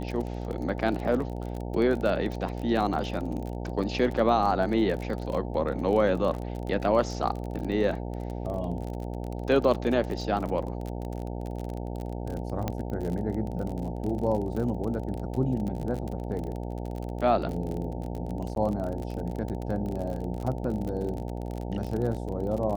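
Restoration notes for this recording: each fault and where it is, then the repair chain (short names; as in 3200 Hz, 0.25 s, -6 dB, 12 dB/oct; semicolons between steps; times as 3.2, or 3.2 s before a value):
buzz 60 Hz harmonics 15 -34 dBFS
crackle 35/s -32 dBFS
12.68 pop -15 dBFS
18.55–18.56 gap 12 ms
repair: de-click; de-hum 60 Hz, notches 15; interpolate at 18.55, 12 ms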